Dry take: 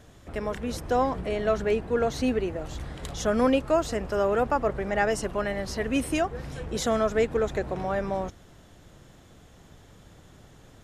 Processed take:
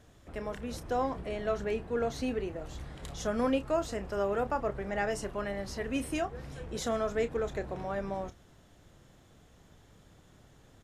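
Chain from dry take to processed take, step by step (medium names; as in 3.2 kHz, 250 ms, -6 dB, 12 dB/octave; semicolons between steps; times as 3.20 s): doubling 30 ms -11.5 dB; trim -7 dB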